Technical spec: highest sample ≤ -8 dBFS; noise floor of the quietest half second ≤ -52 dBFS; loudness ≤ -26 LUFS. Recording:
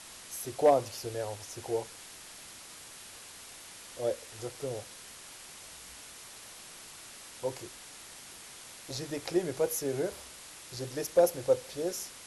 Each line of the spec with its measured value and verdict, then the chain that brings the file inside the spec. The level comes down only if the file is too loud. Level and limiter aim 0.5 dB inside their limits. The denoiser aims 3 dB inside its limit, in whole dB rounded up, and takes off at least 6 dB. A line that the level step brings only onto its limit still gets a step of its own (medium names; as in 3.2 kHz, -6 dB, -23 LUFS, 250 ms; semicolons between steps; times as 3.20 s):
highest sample -13.5 dBFS: pass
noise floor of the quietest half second -49 dBFS: fail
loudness -32.5 LUFS: pass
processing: noise reduction 6 dB, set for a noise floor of -49 dBFS